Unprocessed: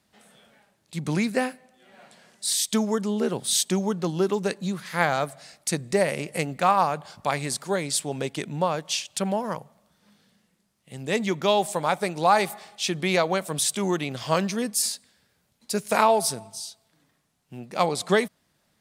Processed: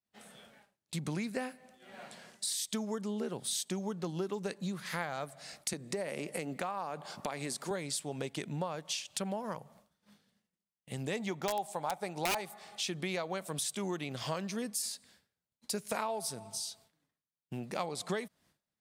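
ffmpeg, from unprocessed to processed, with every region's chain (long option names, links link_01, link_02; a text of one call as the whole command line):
ffmpeg -i in.wav -filter_complex "[0:a]asettb=1/sr,asplit=3[link_01][link_02][link_03];[link_01]atrim=end=5.734[link_04];[link_02]atrim=start=5.73:end=7.71,asetpts=PTS-STARTPTS,afade=type=in:duration=0.004:curve=qsin,afade=type=out:start_time=1.976:duration=0.004:curve=qsin,highpass=230,lowshelf=frequency=460:gain=6,acompressor=threshold=-28dB:ratio=2:attack=3.2:release=140:knee=1:detection=peak[link_05];[link_03]atrim=start=7.706[link_06];[link_04][link_05]acrossfade=duration=0.004:curve1=hsin:curve2=qsin[link_07];[link_07][link_06]acrossfade=duration=0.004:curve1=qsin:curve2=hsin,asettb=1/sr,asplit=3[link_08][link_09][link_10];[link_08]atrim=end=11.164[link_11];[link_09]atrim=start=11.16:end=12.41,asetpts=PTS-STARTPTS,afade=type=in:duration=0.004:curve=qsin,afade=type=out:start_time=1.246:duration=0.004:curve=qsin,equalizer=frequency=790:width=2.7:gain=8.5,aeval=exprs='(mod(2.11*val(0)+1,2)-1)/2.11':channel_layout=same[link_12];[link_10]atrim=start=12.406[link_13];[link_11][link_12]acrossfade=duration=0.004:curve1=hsin:curve2=qsin[link_14];[link_14][link_13]acrossfade=duration=0.004:curve1=qsin:curve2=hsin,agate=range=-33dB:threshold=-53dB:ratio=3:detection=peak,acompressor=threshold=-38dB:ratio=4,volume=2dB" out.wav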